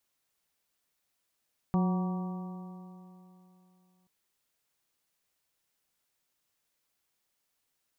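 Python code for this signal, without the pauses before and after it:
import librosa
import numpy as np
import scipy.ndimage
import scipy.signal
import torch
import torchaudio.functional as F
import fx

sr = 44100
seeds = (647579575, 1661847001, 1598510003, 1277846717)

y = fx.additive_stiff(sr, length_s=2.33, hz=181.0, level_db=-23, upper_db=(-12.5, -18.5, -13.5, -15.5, -16.5), decay_s=3.02, stiffness=0.0034)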